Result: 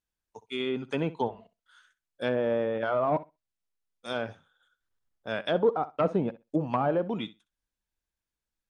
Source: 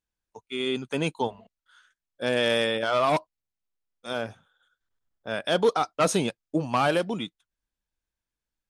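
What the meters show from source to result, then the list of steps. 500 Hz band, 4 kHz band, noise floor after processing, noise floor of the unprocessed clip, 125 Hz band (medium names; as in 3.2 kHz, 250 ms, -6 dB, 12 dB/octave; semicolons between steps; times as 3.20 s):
-2.0 dB, -10.0 dB, under -85 dBFS, under -85 dBFS, -1.5 dB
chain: low-pass that closes with the level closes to 910 Hz, closed at -20.5 dBFS; flutter echo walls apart 10.9 m, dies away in 0.22 s; trim -1.5 dB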